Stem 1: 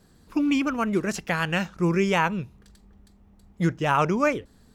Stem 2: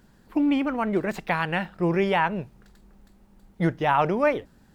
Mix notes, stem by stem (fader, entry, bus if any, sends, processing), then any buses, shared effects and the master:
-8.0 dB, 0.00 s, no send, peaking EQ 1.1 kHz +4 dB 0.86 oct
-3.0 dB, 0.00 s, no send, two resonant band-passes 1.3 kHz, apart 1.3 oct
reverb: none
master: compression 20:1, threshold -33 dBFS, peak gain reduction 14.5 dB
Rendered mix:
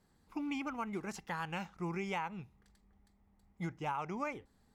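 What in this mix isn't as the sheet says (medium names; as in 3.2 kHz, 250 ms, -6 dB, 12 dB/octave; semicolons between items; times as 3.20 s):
stem 1 -8.0 dB -> -14.5 dB; stem 2 -3.0 dB -> -10.0 dB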